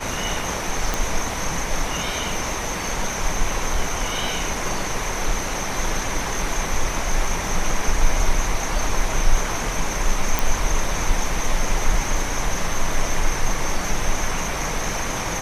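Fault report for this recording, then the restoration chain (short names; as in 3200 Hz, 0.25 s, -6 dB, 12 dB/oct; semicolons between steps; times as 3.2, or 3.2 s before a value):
0.94 pop
10.39 pop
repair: de-click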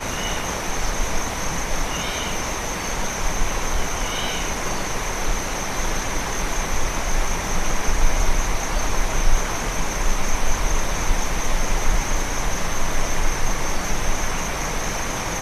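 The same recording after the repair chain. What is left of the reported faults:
none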